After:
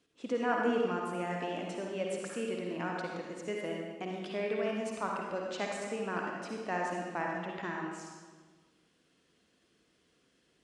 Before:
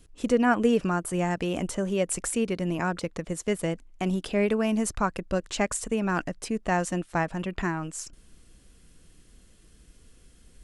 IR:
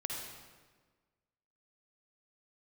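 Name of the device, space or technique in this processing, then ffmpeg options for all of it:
supermarket ceiling speaker: -filter_complex "[0:a]highpass=260,lowpass=5000[link_01];[1:a]atrim=start_sample=2205[link_02];[link_01][link_02]afir=irnorm=-1:irlink=0,volume=-7.5dB"

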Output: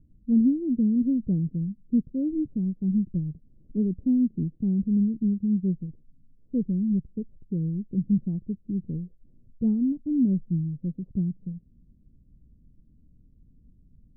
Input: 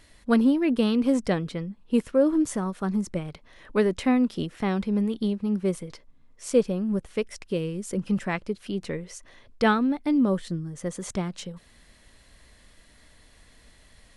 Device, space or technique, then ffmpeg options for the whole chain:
the neighbour's flat through the wall: -af "lowpass=frequency=280:width=0.5412,lowpass=frequency=280:width=1.3066,equalizer=frequency=150:width_type=o:width=0.85:gain=6"

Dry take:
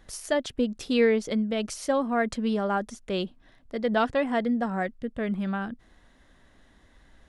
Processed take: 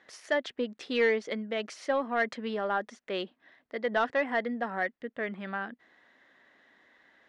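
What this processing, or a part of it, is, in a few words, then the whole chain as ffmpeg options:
intercom: -af "highpass=340,lowpass=4200,equalizer=frequency=1900:width_type=o:width=0.48:gain=7.5,asoftclip=type=tanh:threshold=-14dB,volume=-2dB"

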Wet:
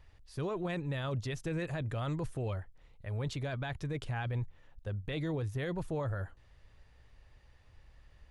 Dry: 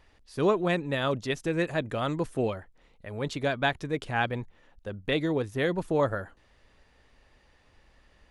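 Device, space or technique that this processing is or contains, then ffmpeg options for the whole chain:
car stereo with a boomy subwoofer: -af "lowshelf=frequency=160:width_type=q:width=1.5:gain=8.5,alimiter=limit=-23.5dB:level=0:latency=1:release=15,volume=-5dB"

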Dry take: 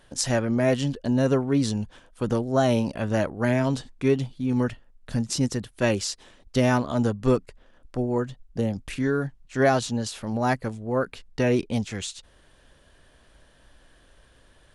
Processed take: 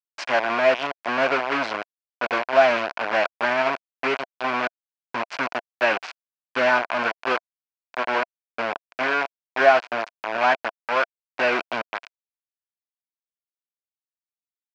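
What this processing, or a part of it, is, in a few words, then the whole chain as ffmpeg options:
hand-held game console: -filter_complex "[0:a]asettb=1/sr,asplit=3[link_01][link_02][link_03];[link_01]atrim=end=7.084[link_04];[link_02]atrim=start=7.08:end=8.07,asetpts=PTS-STARTPTS,afade=type=in:duration=0.004:curve=qsin,afade=type=out:start_time=0.986:duration=0.004:curve=qsin,tiltshelf=frequency=910:gain=-3.5[link_05];[link_03]atrim=start=8.066[link_06];[link_04][link_05]acrossfade=duration=0.004:curve1=hsin:curve2=qsin[link_07];[link_07][link_06]acrossfade=duration=0.004:curve1=qsin:curve2=hsin,acrusher=bits=3:mix=0:aa=0.000001,highpass=460,equalizer=frequency=470:width_type=q:width=4:gain=-3,equalizer=frequency=680:width_type=q:width=4:gain=8,equalizer=frequency=1000:width_type=q:width=4:gain=6,equalizer=frequency=1500:width_type=q:width=4:gain=8,equalizer=frequency=2400:width_type=q:width=4:gain=7,equalizer=frequency=3700:width_type=q:width=4:gain=-6,lowpass=frequency=4200:width=0.5412,lowpass=frequency=4200:width=1.3066"

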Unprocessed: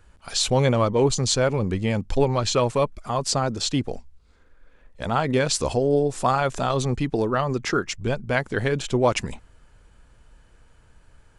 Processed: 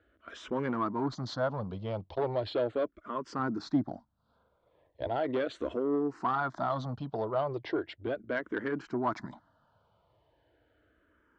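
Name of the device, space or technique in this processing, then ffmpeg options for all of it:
barber-pole phaser into a guitar amplifier: -filter_complex "[0:a]asplit=2[link_01][link_02];[link_02]afreqshift=-0.37[link_03];[link_01][link_03]amix=inputs=2:normalize=1,asoftclip=type=tanh:threshold=-19.5dB,highpass=110,equalizer=frequency=160:width_type=q:width=4:gain=-4,equalizer=frequency=310:width_type=q:width=4:gain=9,equalizer=frequency=650:width_type=q:width=4:gain=8,equalizer=frequency=990:width_type=q:width=4:gain=5,equalizer=frequency=1400:width_type=q:width=4:gain=5,equalizer=frequency=2500:width_type=q:width=4:gain=-9,lowpass=frequency=3900:width=0.5412,lowpass=frequency=3900:width=1.3066,asettb=1/sr,asplit=3[link_04][link_05][link_06];[link_04]atrim=end=3.394[link_07];[link_05]atrim=start=3.39:end=5.08,asetpts=PTS-STARTPTS,afade=type=in:duration=0.004:curve=qsin,afade=type=out:start_time=1.686:duration=0.004:curve=qsin,lowshelf=frequency=400:gain=5.5[link_08];[link_06]atrim=start=5.076[link_09];[link_07][link_08]acrossfade=duration=0.004:curve1=hsin:curve2=qsin[link_10];[link_10][link_09]acrossfade=duration=0.004:curve1=qsin:curve2=hsin,volume=-7.5dB"

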